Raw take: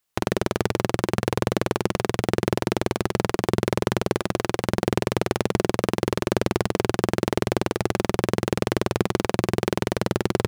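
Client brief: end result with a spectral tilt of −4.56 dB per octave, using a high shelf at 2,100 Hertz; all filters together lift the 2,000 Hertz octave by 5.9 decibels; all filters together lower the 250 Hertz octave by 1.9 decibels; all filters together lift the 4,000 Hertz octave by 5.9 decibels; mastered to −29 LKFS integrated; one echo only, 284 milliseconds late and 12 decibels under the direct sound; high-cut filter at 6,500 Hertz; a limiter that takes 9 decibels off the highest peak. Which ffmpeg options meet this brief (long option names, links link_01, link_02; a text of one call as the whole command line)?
ffmpeg -i in.wav -af "lowpass=6500,equalizer=frequency=250:width_type=o:gain=-3,equalizer=frequency=2000:width_type=o:gain=5,highshelf=frequency=2100:gain=3,equalizer=frequency=4000:width_type=o:gain=3.5,alimiter=limit=-7.5dB:level=0:latency=1,aecho=1:1:284:0.251,volume=1.5dB" out.wav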